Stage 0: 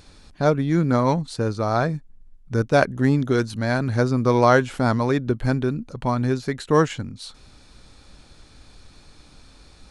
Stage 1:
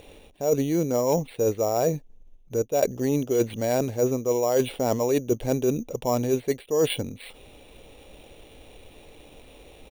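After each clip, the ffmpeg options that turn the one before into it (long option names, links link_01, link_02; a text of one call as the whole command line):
ffmpeg -i in.wav -af "firequalizer=gain_entry='entry(180,0);entry(470,15);entry(1400,-6);entry(2800,13);entry(5100,-15)':delay=0.05:min_phase=1,areverse,acompressor=threshold=-16dB:ratio=16,areverse,acrusher=samples=7:mix=1:aa=0.000001,volume=-3dB" out.wav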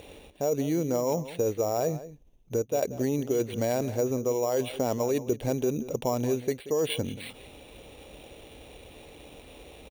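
ffmpeg -i in.wav -filter_complex "[0:a]highpass=40,acompressor=threshold=-25dB:ratio=6,asplit=2[link_01][link_02];[link_02]adelay=180.8,volume=-15dB,highshelf=frequency=4000:gain=-4.07[link_03];[link_01][link_03]amix=inputs=2:normalize=0,volume=1.5dB" out.wav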